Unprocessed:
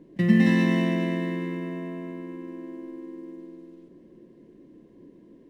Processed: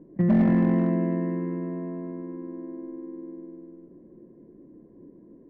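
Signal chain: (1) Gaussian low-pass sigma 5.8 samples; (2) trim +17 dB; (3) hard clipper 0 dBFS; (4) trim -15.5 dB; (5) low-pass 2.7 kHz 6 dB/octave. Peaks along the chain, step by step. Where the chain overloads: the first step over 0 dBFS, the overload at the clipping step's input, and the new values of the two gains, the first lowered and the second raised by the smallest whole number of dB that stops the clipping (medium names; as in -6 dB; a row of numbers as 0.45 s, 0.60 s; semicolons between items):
-8.0 dBFS, +9.0 dBFS, 0.0 dBFS, -15.5 dBFS, -15.5 dBFS; step 2, 9.0 dB; step 2 +8 dB, step 4 -6.5 dB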